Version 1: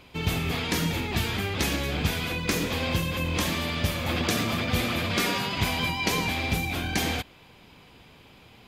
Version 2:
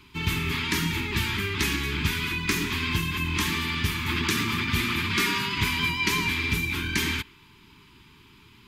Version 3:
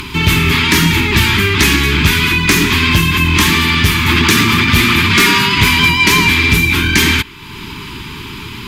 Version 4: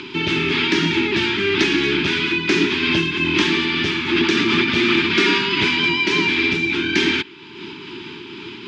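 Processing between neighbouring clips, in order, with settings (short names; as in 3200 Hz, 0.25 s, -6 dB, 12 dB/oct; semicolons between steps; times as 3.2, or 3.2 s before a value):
Chebyshev band-stop 420–870 Hz, order 5; dynamic EQ 2100 Hz, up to +5 dB, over -44 dBFS, Q 1.2
in parallel at +2.5 dB: upward compressor, threshold -27 dBFS; on the sum: sine folder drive 6 dB, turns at -2 dBFS; gain -1 dB
speaker cabinet 230–4900 Hz, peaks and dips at 350 Hz +9 dB, 1100 Hz -9 dB, 2000 Hz -4 dB, 4300 Hz -3 dB; noise-modulated level, depth 50%; gain -2.5 dB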